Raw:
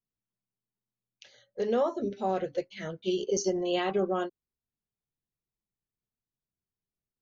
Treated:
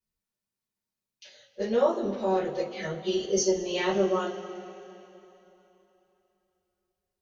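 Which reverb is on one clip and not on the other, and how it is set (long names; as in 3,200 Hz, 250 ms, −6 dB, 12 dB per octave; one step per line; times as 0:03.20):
coupled-rooms reverb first 0.21 s, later 3.2 s, from −22 dB, DRR −9.5 dB
level −6 dB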